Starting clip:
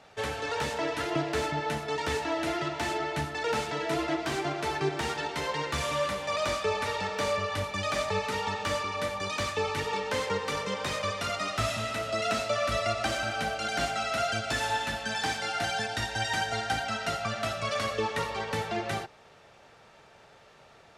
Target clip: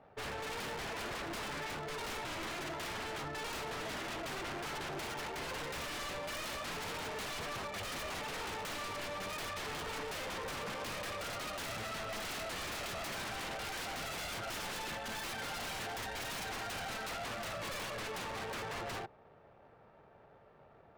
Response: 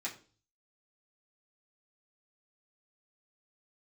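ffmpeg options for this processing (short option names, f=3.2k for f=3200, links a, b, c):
-af "adynamicsmooth=sensitivity=7.5:basefreq=1.1k,aeval=exprs='0.0211*(abs(mod(val(0)/0.0211+3,4)-2)-1)':c=same,volume=-2.5dB"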